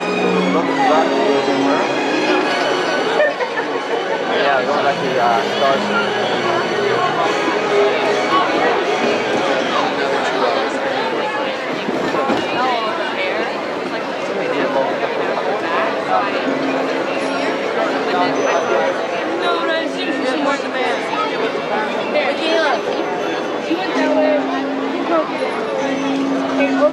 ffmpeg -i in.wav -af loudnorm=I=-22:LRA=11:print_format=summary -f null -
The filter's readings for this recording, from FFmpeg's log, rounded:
Input Integrated:    -17.4 LUFS
Input True Peak:      -1.5 dBTP
Input LRA:             2.6 LU
Input Threshold:     -27.4 LUFS